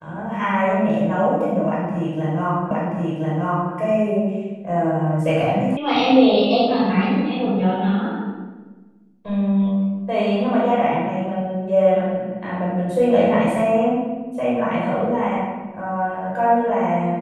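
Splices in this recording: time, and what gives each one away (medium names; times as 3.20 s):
2.71 s: repeat of the last 1.03 s
5.77 s: sound stops dead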